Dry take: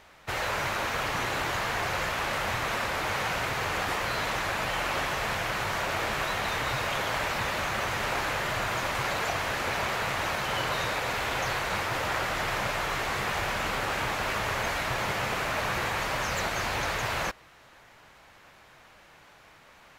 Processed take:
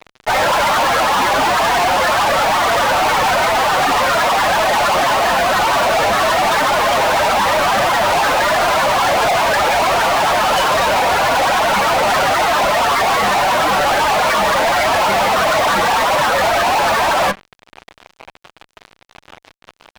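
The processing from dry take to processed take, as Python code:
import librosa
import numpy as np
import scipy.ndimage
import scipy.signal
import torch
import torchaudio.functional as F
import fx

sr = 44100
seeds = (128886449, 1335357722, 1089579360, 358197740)

y = fx.spec_topn(x, sr, count=16)
y = scipy.signal.sosfilt(scipy.signal.cheby1(6, 9, 190.0, 'highpass', fs=sr, output='sos'), y)
y = fx.fuzz(y, sr, gain_db=53.0, gate_db=-58.0)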